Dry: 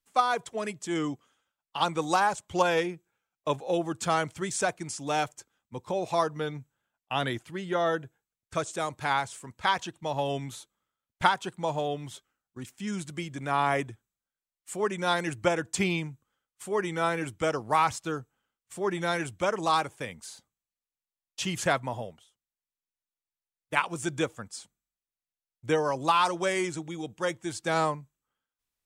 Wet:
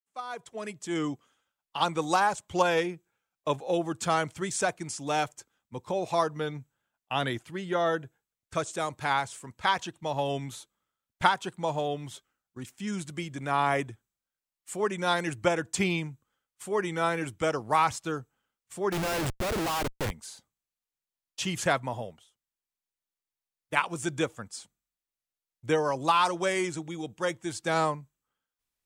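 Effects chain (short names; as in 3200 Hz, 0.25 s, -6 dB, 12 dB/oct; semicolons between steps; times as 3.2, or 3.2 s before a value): opening faded in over 1.04 s; 18.92–20.11 Schmitt trigger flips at -37 dBFS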